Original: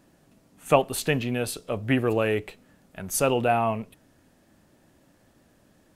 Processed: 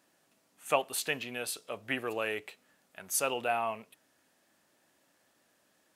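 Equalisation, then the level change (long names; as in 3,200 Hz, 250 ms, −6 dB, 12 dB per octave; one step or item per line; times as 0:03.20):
high-pass filter 1,100 Hz 6 dB per octave
−3.0 dB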